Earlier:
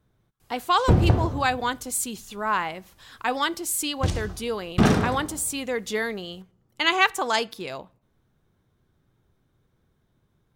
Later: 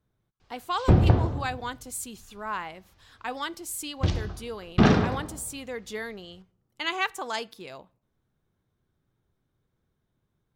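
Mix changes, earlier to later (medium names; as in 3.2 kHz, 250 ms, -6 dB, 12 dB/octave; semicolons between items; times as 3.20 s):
speech -8.0 dB; background: add low-pass 5.3 kHz 24 dB/octave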